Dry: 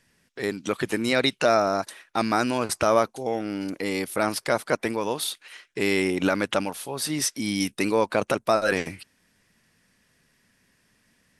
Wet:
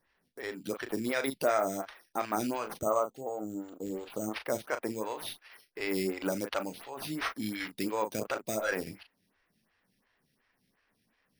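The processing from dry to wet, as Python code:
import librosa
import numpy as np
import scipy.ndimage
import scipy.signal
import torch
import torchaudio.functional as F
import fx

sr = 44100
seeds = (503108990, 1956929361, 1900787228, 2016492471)

y = fx.cheby1_bandstop(x, sr, low_hz=1300.0, high_hz=7200.0, order=4, at=(2.69, 4.35))
y = np.repeat(y[::6], 6)[:len(y)]
y = fx.doubler(y, sr, ms=37.0, db=-9.0)
y = fx.stagger_phaser(y, sr, hz=2.8)
y = F.gain(torch.from_numpy(y), -6.5).numpy()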